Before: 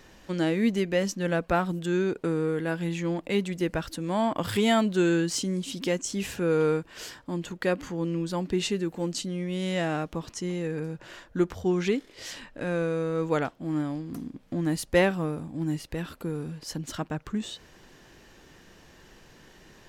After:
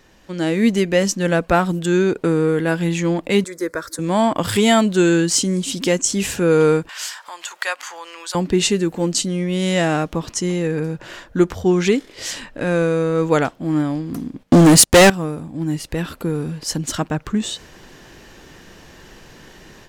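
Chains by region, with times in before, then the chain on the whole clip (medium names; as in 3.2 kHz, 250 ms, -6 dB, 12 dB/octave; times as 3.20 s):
3.44–3.99 s: high-pass 380 Hz 6 dB/octave + static phaser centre 770 Hz, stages 6
6.89–8.35 s: high-pass 820 Hz 24 dB/octave + upward compressor, threshold -38 dBFS
14.43–15.10 s: high-pass 71 Hz 6 dB/octave + waveshaping leveller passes 5
whole clip: dynamic bell 7.9 kHz, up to +6 dB, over -51 dBFS, Q 1.1; level rider gain up to 10 dB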